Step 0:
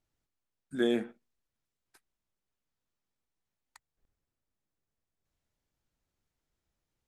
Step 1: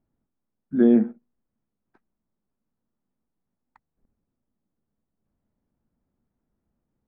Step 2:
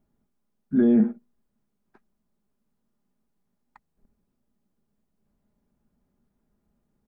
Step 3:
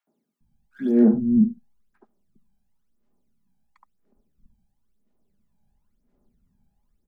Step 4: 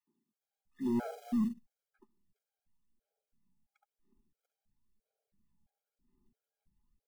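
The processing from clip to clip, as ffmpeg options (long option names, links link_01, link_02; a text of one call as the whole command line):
ffmpeg -i in.wav -af "lowpass=1100,equalizer=frequency=220:width_type=o:width=0.77:gain=11.5,volume=5.5dB" out.wav
ffmpeg -i in.wav -af "aecho=1:1:4.9:0.37,alimiter=limit=-16dB:level=0:latency=1:release=11,volume=4dB" out.wav
ffmpeg -i in.wav -filter_complex "[0:a]aphaser=in_gain=1:out_gain=1:delay=1.3:decay=0.74:speed=0.98:type=sinusoidal,acrossover=split=160|220|820[link_01][link_02][link_03][link_04];[link_01]volume=16.5dB,asoftclip=hard,volume=-16.5dB[link_05];[link_05][link_02][link_03][link_04]amix=inputs=4:normalize=0,acrossover=split=220|1300[link_06][link_07][link_08];[link_07]adelay=70[link_09];[link_06]adelay=400[link_10];[link_10][link_09][link_08]amix=inputs=3:normalize=0,volume=-3dB" out.wav
ffmpeg -i in.wav -af "aeval=exprs='(tanh(10*val(0)+0.1)-tanh(0.1))/10':channel_layout=same,acrusher=bits=6:mode=log:mix=0:aa=0.000001,afftfilt=real='re*gt(sin(2*PI*1.5*pts/sr)*(1-2*mod(floor(b*sr/1024/420),2)),0)':imag='im*gt(sin(2*PI*1.5*pts/sr)*(1-2*mod(floor(b*sr/1024/420),2)),0)':win_size=1024:overlap=0.75,volume=-6.5dB" out.wav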